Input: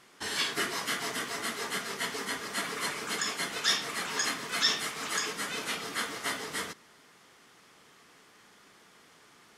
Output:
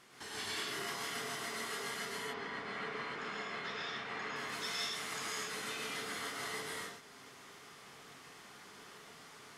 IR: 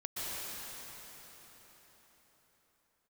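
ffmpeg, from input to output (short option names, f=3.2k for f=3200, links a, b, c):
-filter_complex "[0:a]asettb=1/sr,asplit=3[a][b][c];[a]atrim=end=2.054[d];[b]atrim=start=2.05:end=4.36,asetpts=PTS-STARTPTS,afade=t=in:d=0.004:c=qsin,afade=t=out:st=2.306:d=0.004:c=qsin,lowpass=2.6k[e];[c]atrim=start=4.356[f];[d][e]acrossfade=d=0.004:c1=hsin:c2=qsin[g];[g][f]acrossfade=d=0.004:c1=qsin:c2=hsin,acompressor=threshold=-50dB:ratio=2[h];[1:a]atrim=start_sample=2205,afade=t=out:st=0.39:d=0.01,atrim=end_sample=17640,asetrate=52920,aresample=44100[i];[h][i]afir=irnorm=-1:irlink=0,volume=3.5dB"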